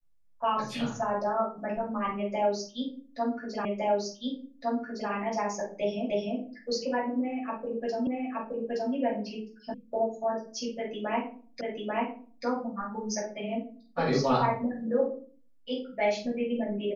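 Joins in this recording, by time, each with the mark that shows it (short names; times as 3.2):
3.65 repeat of the last 1.46 s
6.1 repeat of the last 0.3 s
8.07 repeat of the last 0.87 s
9.74 sound cut off
11.61 repeat of the last 0.84 s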